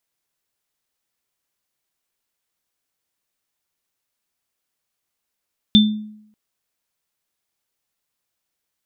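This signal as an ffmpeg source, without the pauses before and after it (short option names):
-f lavfi -i "aevalsrc='0.447*pow(10,-3*t/0.72)*sin(2*PI*213*t)+0.376*pow(10,-3*t/0.29)*sin(2*PI*3550*t)':d=0.59:s=44100"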